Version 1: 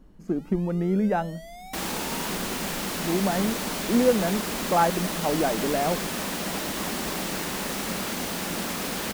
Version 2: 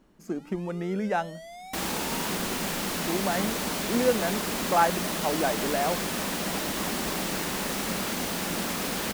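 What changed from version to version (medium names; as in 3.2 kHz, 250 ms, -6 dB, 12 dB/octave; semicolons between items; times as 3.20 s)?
speech: add tilt EQ +3 dB/octave; first sound: add low-pass 11 kHz 12 dB/octave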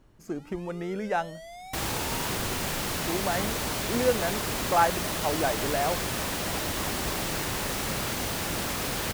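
master: add resonant low shelf 150 Hz +6.5 dB, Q 3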